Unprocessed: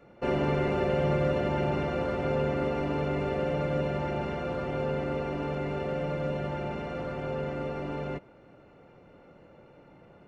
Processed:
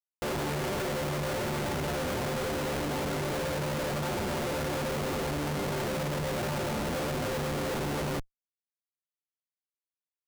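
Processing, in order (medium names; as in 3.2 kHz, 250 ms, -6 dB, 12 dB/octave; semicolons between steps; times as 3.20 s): chorus voices 2, 1.3 Hz, delay 11 ms, depth 3 ms; Schmitt trigger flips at -44 dBFS; trim +2 dB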